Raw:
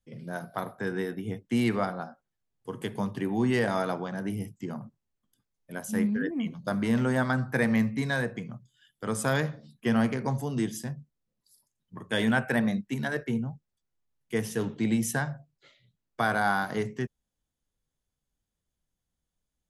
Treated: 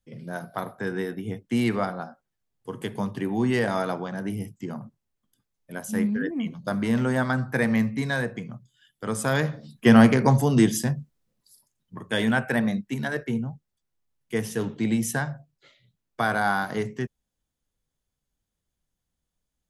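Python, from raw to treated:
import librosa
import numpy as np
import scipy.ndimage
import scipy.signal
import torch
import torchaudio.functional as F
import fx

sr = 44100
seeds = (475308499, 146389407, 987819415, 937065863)

y = fx.gain(x, sr, db=fx.line((9.29, 2.0), (9.9, 10.5), (10.79, 10.5), (12.23, 2.0)))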